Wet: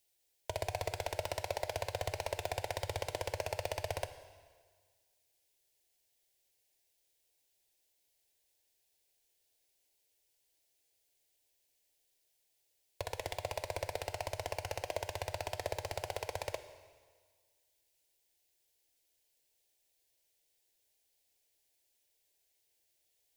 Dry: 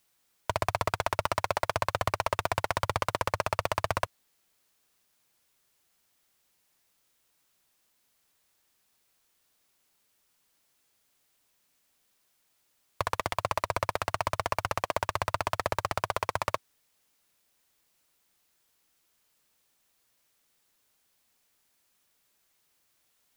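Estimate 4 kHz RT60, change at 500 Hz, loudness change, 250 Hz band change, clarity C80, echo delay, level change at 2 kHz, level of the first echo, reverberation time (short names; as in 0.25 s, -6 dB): 1.5 s, -5.5 dB, -9.0 dB, -10.5 dB, 13.0 dB, none, -10.5 dB, none, 1.6 s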